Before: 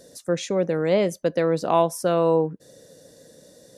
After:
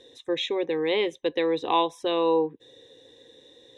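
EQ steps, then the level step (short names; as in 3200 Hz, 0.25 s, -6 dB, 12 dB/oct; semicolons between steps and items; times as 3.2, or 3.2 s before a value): synth low-pass 3800 Hz, resonance Q 12; low shelf 73 Hz -9 dB; fixed phaser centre 930 Hz, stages 8; 0.0 dB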